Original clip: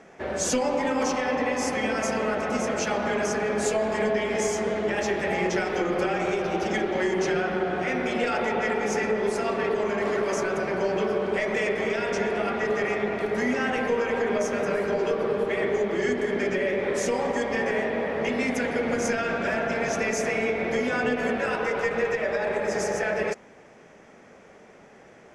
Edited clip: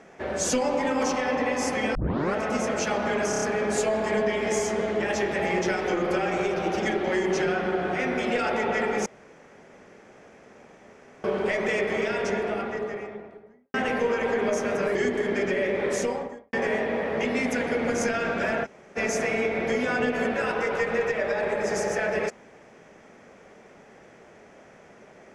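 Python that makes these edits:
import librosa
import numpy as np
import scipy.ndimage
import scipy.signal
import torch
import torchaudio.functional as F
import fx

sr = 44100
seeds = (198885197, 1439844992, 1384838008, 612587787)

y = fx.studio_fade_out(x, sr, start_s=11.94, length_s=1.68)
y = fx.studio_fade_out(y, sr, start_s=16.97, length_s=0.6)
y = fx.edit(y, sr, fx.tape_start(start_s=1.95, length_s=0.39),
    fx.stutter(start_s=3.3, slice_s=0.03, count=5),
    fx.room_tone_fill(start_s=8.94, length_s=2.18),
    fx.cut(start_s=14.83, length_s=1.16),
    fx.room_tone_fill(start_s=19.69, length_s=0.32, crossfade_s=0.04), tone=tone)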